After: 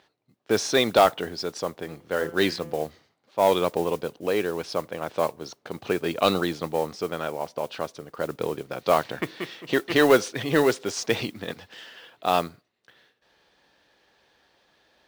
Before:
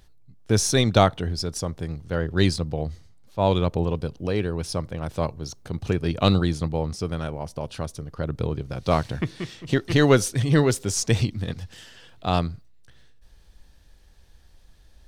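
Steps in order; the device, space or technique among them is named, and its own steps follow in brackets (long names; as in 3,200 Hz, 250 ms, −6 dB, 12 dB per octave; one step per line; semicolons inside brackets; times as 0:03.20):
carbon microphone (band-pass filter 370–3,600 Hz; soft clipping −12 dBFS, distortion −16 dB; noise that follows the level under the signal 21 dB)
0:01.80–0:02.80: hum removal 169.6 Hz, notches 19
level +4.5 dB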